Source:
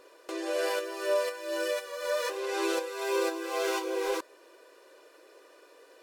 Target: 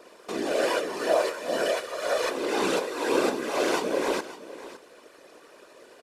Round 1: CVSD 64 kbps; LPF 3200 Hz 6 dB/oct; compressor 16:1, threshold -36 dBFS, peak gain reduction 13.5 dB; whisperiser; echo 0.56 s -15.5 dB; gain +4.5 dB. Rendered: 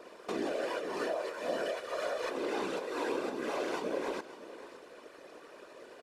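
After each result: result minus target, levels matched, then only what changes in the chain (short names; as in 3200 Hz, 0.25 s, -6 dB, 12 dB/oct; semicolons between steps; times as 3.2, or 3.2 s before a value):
compressor: peak gain reduction +13.5 dB; 8000 Hz band -5.0 dB
remove: compressor 16:1, threshold -36 dBFS, peak gain reduction 13.5 dB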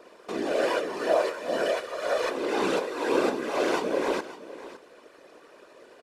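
8000 Hz band -5.5 dB
change: LPF 10000 Hz 6 dB/oct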